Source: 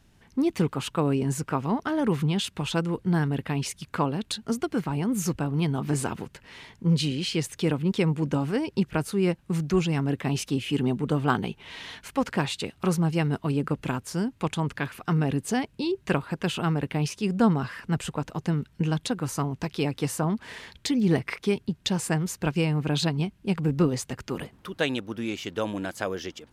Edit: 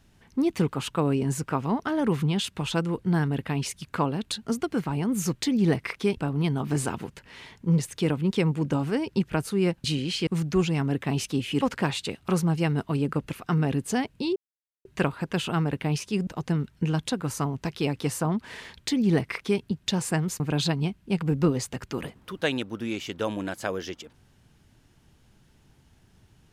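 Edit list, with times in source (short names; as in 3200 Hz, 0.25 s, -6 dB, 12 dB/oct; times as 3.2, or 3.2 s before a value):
6.97–7.4 move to 9.45
10.79–12.16 cut
13.88–14.92 cut
15.95 insert silence 0.49 s
17.37–18.25 cut
20.78–21.6 copy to 5.35
22.38–22.77 cut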